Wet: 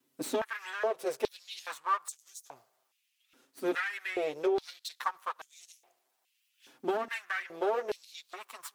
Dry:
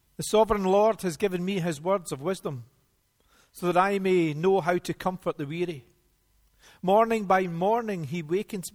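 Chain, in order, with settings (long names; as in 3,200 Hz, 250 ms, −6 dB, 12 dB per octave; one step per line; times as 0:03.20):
lower of the sound and its delayed copy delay 7.7 ms
downward compressor 12 to 1, threshold −25 dBFS, peak gain reduction 9.5 dB
high-pass on a step sequencer 2.4 Hz 290–6,500 Hz
level −5.5 dB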